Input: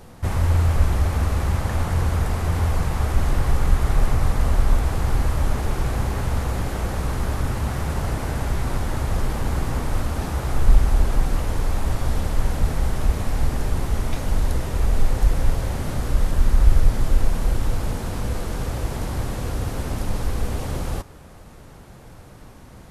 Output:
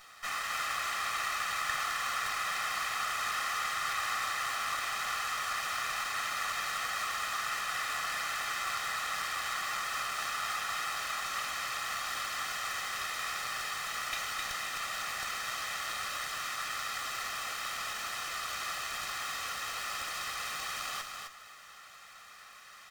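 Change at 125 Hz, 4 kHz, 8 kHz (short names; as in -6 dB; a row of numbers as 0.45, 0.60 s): -38.0, +3.5, -0.5 dB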